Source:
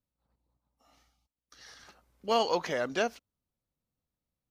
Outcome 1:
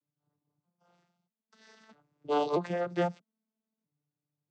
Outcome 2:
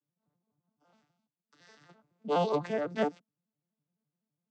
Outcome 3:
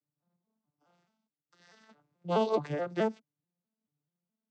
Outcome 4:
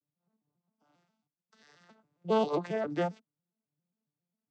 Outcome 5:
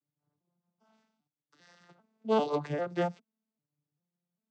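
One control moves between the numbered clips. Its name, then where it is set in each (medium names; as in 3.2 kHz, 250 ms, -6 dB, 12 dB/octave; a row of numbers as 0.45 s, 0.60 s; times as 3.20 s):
vocoder on a broken chord, a note every: 639 ms, 84 ms, 214 ms, 135 ms, 397 ms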